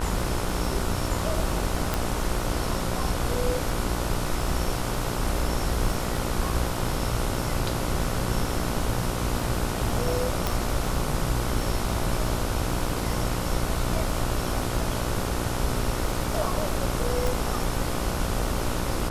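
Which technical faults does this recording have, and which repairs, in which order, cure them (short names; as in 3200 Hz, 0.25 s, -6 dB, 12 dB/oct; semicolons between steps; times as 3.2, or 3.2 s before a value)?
buzz 60 Hz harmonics 25 -31 dBFS
crackle 51/s -34 dBFS
1.94 pop
10.47 pop
17.27 pop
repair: de-click; de-hum 60 Hz, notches 25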